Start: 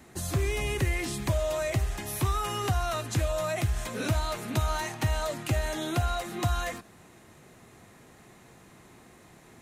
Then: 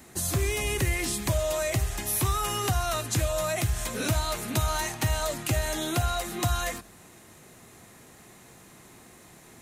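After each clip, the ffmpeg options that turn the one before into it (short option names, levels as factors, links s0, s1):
-af "highshelf=f=5000:g=9,bandreject=f=46.21:t=h:w=4,bandreject=f=92.42:t=h:w=4,bandreject=f=138.63:t=h:w=4,volume=1.12"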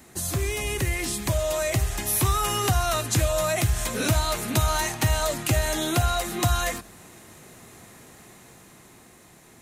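-af "dynaudnorm=f=240:g=13:m=1.58"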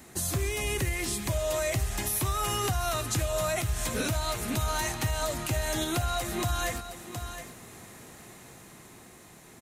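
-af "aecho=1:1:717:0.178,alimiter=limit=0.106:level=0:latency=1:release=294"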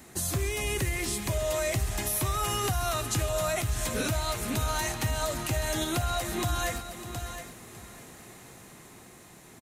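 -af "aecho=1:1:603:0.2"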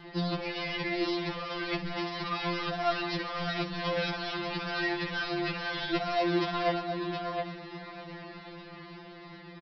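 -af "aresample=11025,volume=44.7,asoftclip=hard,volume=0.0224,aresample=44100,afftfilt=real='re*2.83*eq(mod(b,8),0)':imag='im*2.83*eq(mod(b,8),0)':win_size=2048:overlap=0.75,volume=2.24"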